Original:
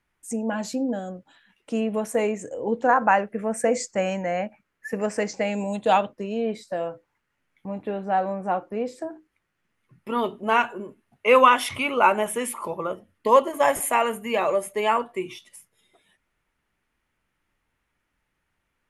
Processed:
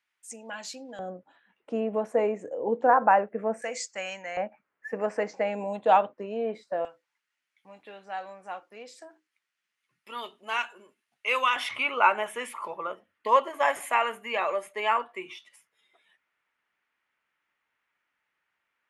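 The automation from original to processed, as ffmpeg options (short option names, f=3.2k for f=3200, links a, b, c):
-af "asetnsamples=n=441:p=0,asendcmd='0.99 bandpass f 660;3.62 bandpass f 3500;4.37 bandpass f 870;6.85 bandpass f 4700;11.56 bandpass f 1800',bandpass=f=3.6k:t=q:w=0.7:csg=0"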